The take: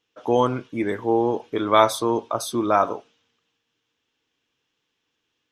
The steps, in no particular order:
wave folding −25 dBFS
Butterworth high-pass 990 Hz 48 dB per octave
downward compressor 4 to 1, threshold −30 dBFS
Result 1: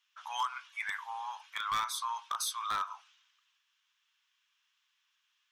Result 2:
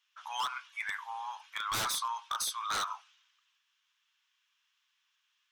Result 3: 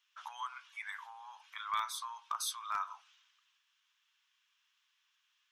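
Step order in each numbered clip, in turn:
Butterworth high-pass, then downward compressor, then wave folding
Butterworth high-pass, then wave folding, then downward compressor
downward compressor, then Butterworth high-pass, then wave folding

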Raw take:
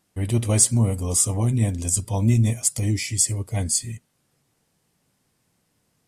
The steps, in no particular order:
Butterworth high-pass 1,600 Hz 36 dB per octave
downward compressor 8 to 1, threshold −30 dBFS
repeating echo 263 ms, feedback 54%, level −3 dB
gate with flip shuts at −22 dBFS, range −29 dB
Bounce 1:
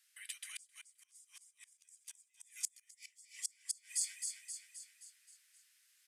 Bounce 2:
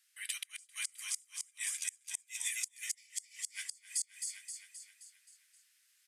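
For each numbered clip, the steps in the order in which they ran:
downward compressor, then repeating echo, then gate with flip, then Butterworth high-pass
Butterworth high-pass, then downward compressor, then repeating echo, then gate with flip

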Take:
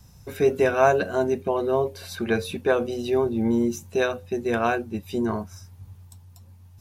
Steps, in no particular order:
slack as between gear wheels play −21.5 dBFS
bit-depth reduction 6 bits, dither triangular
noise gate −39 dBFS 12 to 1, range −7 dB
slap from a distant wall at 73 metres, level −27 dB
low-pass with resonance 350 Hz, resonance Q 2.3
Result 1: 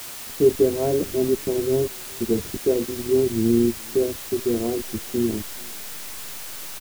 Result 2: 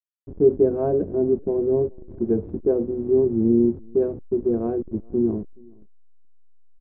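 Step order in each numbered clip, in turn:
noise gate, then slack as between gear wheels, then low-pass with resonance, then bit-depth reduction, then slap from a distant wall
bit-depth reduction, then slack as between gear wheels, then low-pass with resonance, then noise gate, then slap from a distant wall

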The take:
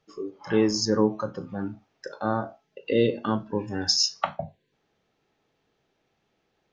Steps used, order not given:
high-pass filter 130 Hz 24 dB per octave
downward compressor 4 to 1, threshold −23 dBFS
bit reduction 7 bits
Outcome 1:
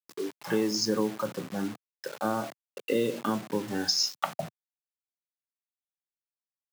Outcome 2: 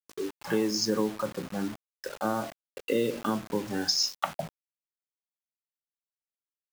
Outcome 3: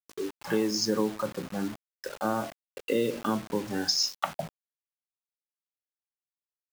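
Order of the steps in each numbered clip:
downward compressor, then bit reduction, then high-pass filter
downward compressor, then high-pass filter, then bit reduction
high-pass filter, then downward compressor, then bit reduction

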